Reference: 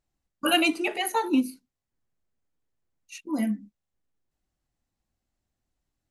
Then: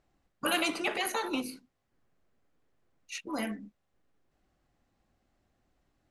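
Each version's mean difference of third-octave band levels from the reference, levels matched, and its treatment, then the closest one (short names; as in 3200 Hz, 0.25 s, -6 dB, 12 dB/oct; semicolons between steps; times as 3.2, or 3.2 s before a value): 8.0 dB: LPF 1500 Hz 6 dB/oct; low shelf 200 Hz -8.5 dB; notch 920 Hz, Q 14; spectral compressor 2:1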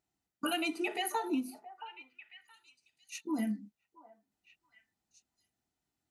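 3.0 dB: HPF 160 Hz 6 dB/oct; compressor 6:1, threshold -30 dBFS, peak gain reduction 12.5 dB; notch comb 550 Hz; on a send: delay with a stepping band-pass 0.673 s, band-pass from 830 Hz, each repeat 1.4 oct, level -11.5 dB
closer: second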